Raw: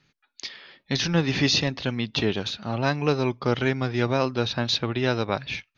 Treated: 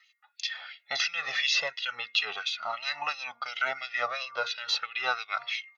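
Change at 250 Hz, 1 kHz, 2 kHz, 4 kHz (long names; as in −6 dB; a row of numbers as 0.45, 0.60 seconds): below −35 dB, −2.5 dB, +0.5 dB, −2.5 dB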